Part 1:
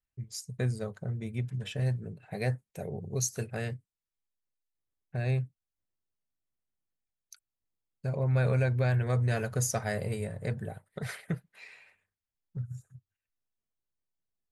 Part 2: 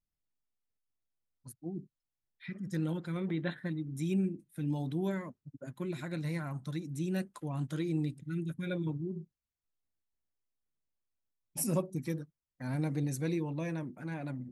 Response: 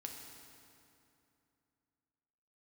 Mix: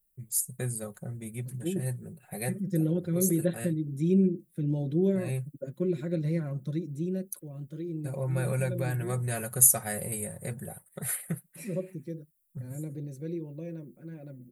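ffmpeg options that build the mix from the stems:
-filter_complex "[0:a]aexciter=amount=9.7:drive=8.3:freq=8000,volume=-3dB[link_01];[1:a]lowshelf=frequency=650:width_type=q:width=3:gain=8,volume=-4.5dB,afade=type=out:start_time=6.67:duration=0.62:silence=0.316228,asplit=2[link_02][link_03];[link_03]apad=whole_len=640331[link_04];[link_01][link_04]sidechaincompress=threshold=-36dB:ratio=4:attack=16:release=156[link_05];[link_05][link_02]amix=inputs=2:normalize=0,aecho=1:1:5.5:0.44"

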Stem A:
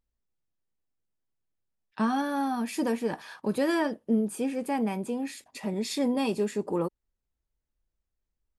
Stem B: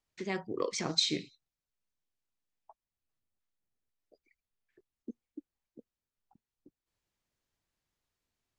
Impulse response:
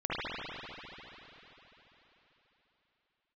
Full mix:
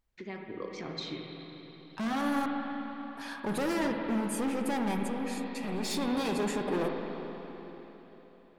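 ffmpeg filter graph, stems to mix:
-filter_complex "[0:a]asoftclip=type=hard:threshold=-31.5dB,volume=0.5dB,asplit=3[link_01][link_02][link_03];[link_01]atrim=end=2.46,asetpts=PTS-STARTPTS,afade=type=out:start_time=2.456:duration=0.004:curve=hsin[link_04];[link_02]atrim=start=2.46:end=3.17,asetpts=PTS-STARTPTS,volume=0[link_05];[link_03]atrim=start=3.17,asetpts=PTS-STARTPTS,afade=type=in:duration=0.004:curve=hsin[link_06];[link_04][link_05][link_06]concat=n=3:v=0:a=1,asplit=2[link_07][link_08];[link_08]volume=-11dB[link_09];[1:a]lowpass=3300,acompressor=threshold=-47dB:ratio=1.5,volume=-2.5dB,asplit=3[link_10][link_11][link_12];[link_11]volume=-9.5dB[link_13];[link_12]apad=whole_len=378415[link_14];[link_07][link_14]sidechaincompress=threshold=-48dB:ratio=8:attack=5.6:release=1180[link_15];[2:a]atrim=start_sample=2205[link_16];[link_09][link_13]amix=inputs=2:normalize=0[link_17];[link_17][link_16]afir=irnorm=-1:irlink=0[link_18];[link_15][link_10][link_18]amix=inputs=3:normalize=0"

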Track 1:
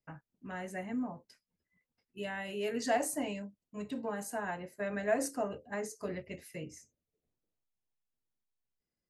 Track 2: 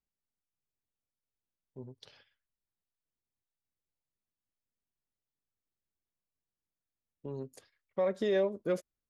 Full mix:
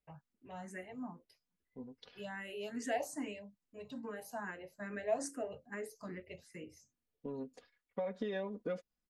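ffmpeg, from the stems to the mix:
ffmpeg -i stem1.wav -i stem2.wav -filter_complex "[0:a]asplit=2[link_01][link_02];[link_02]afreqshift=2.4[link_03];[link_01][link_03]amix=inputs=2:normalize=1,volume=-3dB[link_04];[1:a]lowpass=4000,aecho=1:1:4.1:0.74,acompressor=threshold=-34dB:ratio=4,volume=-2dB[link_05];[link_04][link_05]amix=inputs=2:normalize=0" out.wav

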